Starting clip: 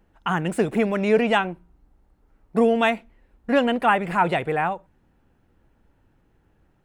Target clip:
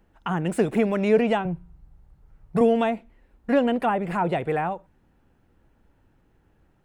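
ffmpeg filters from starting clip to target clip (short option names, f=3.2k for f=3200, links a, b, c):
-filter_complex "[0:a]asettb=1/sr,asplit=3[a][b][c];[a]atrim=end=1.454[d];[b]atrim=start=1.45:end=2.61,asetpts=PTS-STARTPTS,afade=t=in:d=0.004:c=qsin,afade=t=out:st=1.156:d=0.004:c=qsin,lowshelf=f=190:t=q:w=3:g=7[e];[c]atrim=start=2.606[f];[d][e]acrossfade=d=0.004:c1=hsin:c2=qsin[g];[g][f]acrossfade=d=0.004:c1=qsin:c2=hsin,acrossover=split=800[h][i];[i]acompressor=threshold=-31dB:ratio=6[j];[h][j]amix=inputs=2:normalize=0"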